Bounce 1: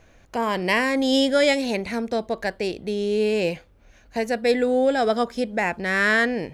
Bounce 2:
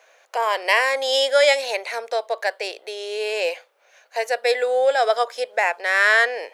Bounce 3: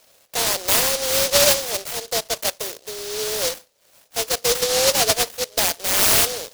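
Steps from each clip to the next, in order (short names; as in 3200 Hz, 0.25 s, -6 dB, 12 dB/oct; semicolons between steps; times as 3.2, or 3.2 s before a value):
steep high-pass 500 Hz 36 dB/oct; gain +4 dB
noise-modulated delay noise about 4700 Hz, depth 0.27 ms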